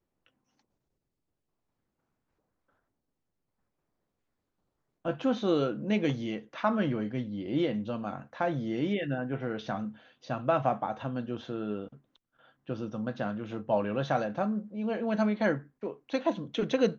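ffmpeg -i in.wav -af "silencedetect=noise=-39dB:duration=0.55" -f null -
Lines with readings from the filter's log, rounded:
silence_start: 0.00
silence_end: 5.05 | silence_duration: 5.05
silence_start: 11.87
silence_end: 12.69 | silence_duration: 0.82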